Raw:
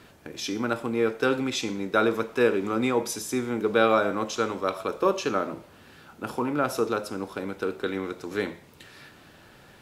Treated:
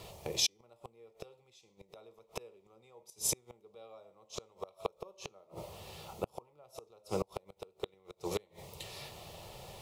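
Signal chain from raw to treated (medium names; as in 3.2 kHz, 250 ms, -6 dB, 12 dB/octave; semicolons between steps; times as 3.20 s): bit crusher 12-bit; inverted gate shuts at -21 dBFS, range -36 dB; static phaser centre 650 Hz, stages 4; trim +6.5 dB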